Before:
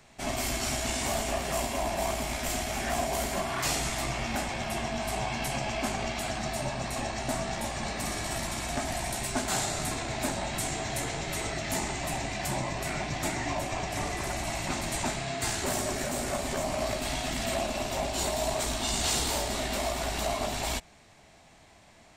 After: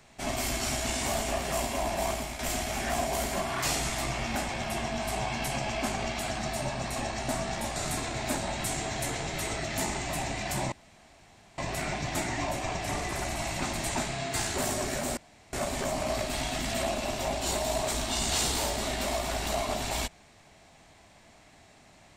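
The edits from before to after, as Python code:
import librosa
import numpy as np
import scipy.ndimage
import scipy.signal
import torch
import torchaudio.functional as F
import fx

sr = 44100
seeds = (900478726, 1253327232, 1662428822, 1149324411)

y = fx.edit(x, sr, fx.fade_out_to(start_s=2.11, length_s=0.28, floor_db=-7.5),
    fx.cut(start_s=7.76, length_s=1.94),
    fx.insert_room_tone(at_s=12.66, length_s=0.86),
    fx.insert_room_tone(at_s=16.25, length_s=0.36), tone=tone)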